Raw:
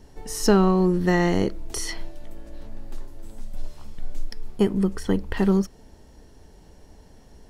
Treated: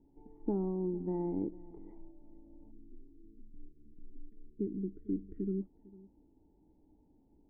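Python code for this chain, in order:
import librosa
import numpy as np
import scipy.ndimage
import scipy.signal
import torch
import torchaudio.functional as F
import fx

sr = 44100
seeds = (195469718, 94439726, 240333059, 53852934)

y = fx.spec_erase(x, sr, start_s=2.71, length_s=2.9, low_hz=460.0, high_hz=1300.0)
y = fx.formant_cascade(y, sr, vowel='u')
y = y + 10.0 ** (-20.5 / 20.0) * np.pad(y, (int(451 * sr / 1000.0), 0))[:len(y)]
y = y * 10.0 ** (-5.5 / 20.0)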